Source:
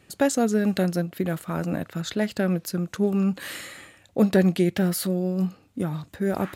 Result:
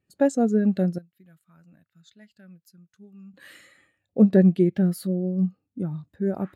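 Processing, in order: 0.98–3.34 s: amplifier tone stack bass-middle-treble 5-5-5; spectral contrast expander 1.5:1; trim +1.5 dB

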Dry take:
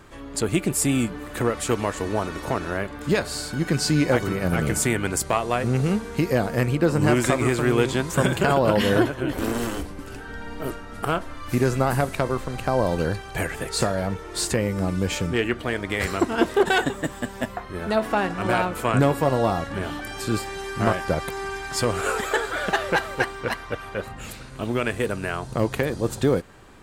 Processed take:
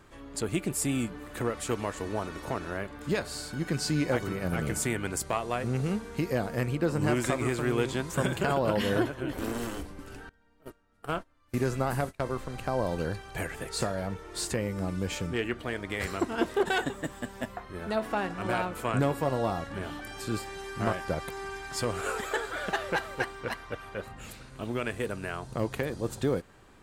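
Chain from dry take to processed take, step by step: 10.29–12.26 s: gate -25 dBFS, range -24 dB; trim -7.5 dB

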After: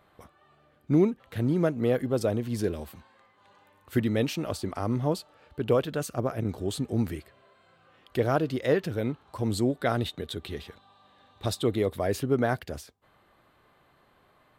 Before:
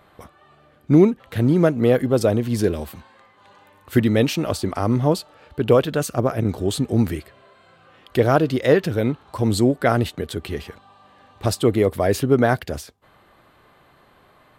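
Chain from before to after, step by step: 9.68–11.97 s: peaking EQ 3.7 kHz +11.5 dB 0.21 oct; trim -8.5 dB

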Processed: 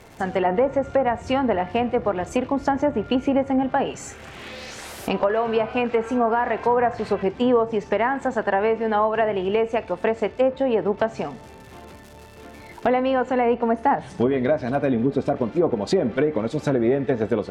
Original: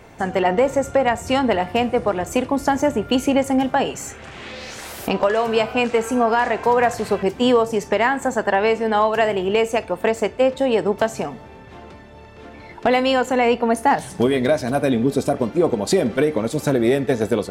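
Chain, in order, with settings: crackle 270 per s -34 dBFS; low-pass that closes with the level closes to 1.5 kHz, closed at -13 dBFS; trim -2.5 dB

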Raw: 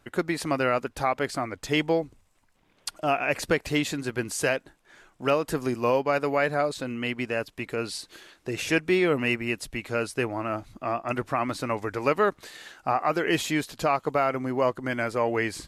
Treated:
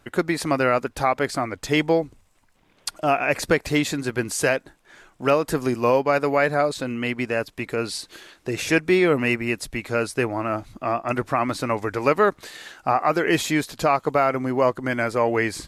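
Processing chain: dynamic bell 2.9 kHz, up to -5 dB, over -49 dBFS, Q 5.8; trim +4.5 dB

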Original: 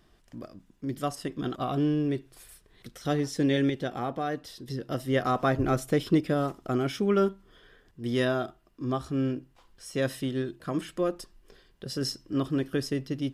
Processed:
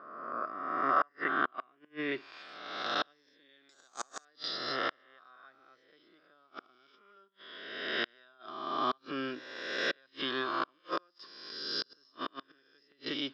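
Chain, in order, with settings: reverse spectral sustain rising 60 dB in 1.38 s; inverted gate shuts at -18 dBFS, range -37 dB; low-pass sweep 1.3 kHz -> 3.6 kHz, 0.37–2.85 s; 3.69–4.25 s: careless resampling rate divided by 6×, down none, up zero stuff; cabinet simulation 490–5500 Hz, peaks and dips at 510 Hz -4 dB, 740 Hz -4 dB, 1.1 kHz +6 dB, 1.5 kHz +7 dB, 2.9 kHz -3 dB, 4.9 kHz +9 dB

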